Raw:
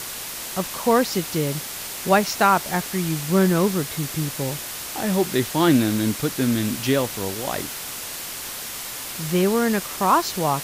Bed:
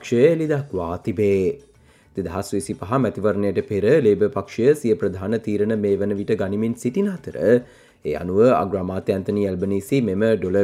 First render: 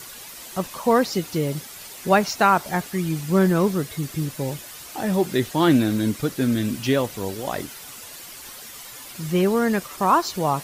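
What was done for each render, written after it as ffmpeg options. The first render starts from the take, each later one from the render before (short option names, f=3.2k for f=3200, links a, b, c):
-af "afftdn=nr=10:nf=-33"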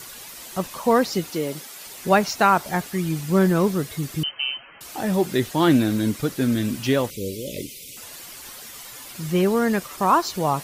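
-filter_complex "[0:a]asettb=1/sr,asplit=3[a][b][c];[a]atrim=end=1.304[d];[b]atrim=start=1.3:end=1.86,asetpts=PTS-STARTPTS,afade=t=in:d=0.004:c=qsin,afade=t=out:st=0.556:d=0.004:c=qsin,highpass=240[e];[c]atrim=start=1.856[f];[d][e]acrossfade=d=0.004:c1=hsin:c2=qsin[g];[g][f]acrossfade=d=0.004:c1=qsin:c2=hsin,asettb=1/sr,asplit=3[h][i][j];[h]atrim=end=4.234[k];[i]atrim=start=4.23:end=4.81,asetpts=PTS-STARTPTS,afade=t=in:d=0.004:c=qsin,afade=t=out:st=0.576:d=0.004:c=qsin,lowpass=f=2.7k:t=q:w=0.5098,lowpass=f=2.7k:t=q:w=0.6013,lowpass=f=2.7k:t=q:w=0.9,lowpass=f=2.7k:t=q:w=2.563,afreqshift=-3200[l];[j]atrim=start=4.806[m];[k][l]acrossfade=d=0.004:c1=hsin:c2=qsin[n];[n][m]acrossfade=d=0.004:c1=qsin:c2=hsin,asettb=1/sr,asplit=3[o][p][q];[o]atrim=end=7.104[r];[p]atrim=start=7.1:end=7.97,asetpts=PTS-STARTPTS,afade=t=in:d=0.004:c=qsin,afade=t=out:st=0.866:d=0.004:c=qsin,asuperstop=centerf=1100:order=20:qfactor=0.72[s];[q]atrim=start=7.966[t];[r][s]acrossfade=d=0.004:c1=hsin:c2=qsin[u];[u][t]acrossfade=d=0.004:c1=qsin:c2=hsin"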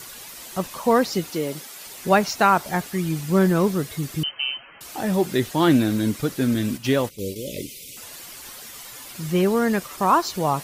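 -filter_complex "[0:a]asettb=1/sr,asplit=3[a][b][c];[a]atrim=end=6.544[d];[b]atrim=start=6.54:end=7.36,asetpts=PTS-STARTPTS,afade=t=in:d=0.004:c=qsin,afade=t=out:st=0.816:d=0.004:c=qsin,agate=range=-9dB:threshold=-32dB:ratio=16:release=100:detection=peak[e];[c]atrim=start=7.356[f];[d][e]acrossfade=d=0.004:c1=hsin:c2=qsin[g];[g][f]acrossfade=d=0.004:c1=qsin:c2=hsin"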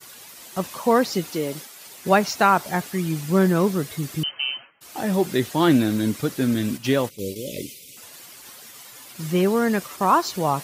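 -af "agate=range=-33dB:threshold=-35dB:ratio=3:detection=peak,highpass=88"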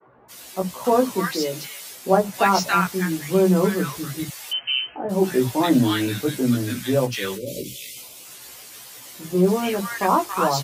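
-filter_complex "[0:a]asplit=2[a][b];[b]adelay=16,volume=-2dB[c];[a][c]amix=inputs=2:normalize=0,acrossover=split=210|1200[d][e][f];[d]adelay=50[g];[f]adelay=280[h];[g][e][h]amix=inputs=3:normalize=0"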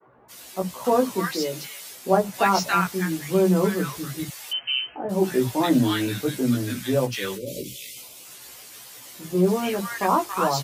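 -af "volume=-2dB"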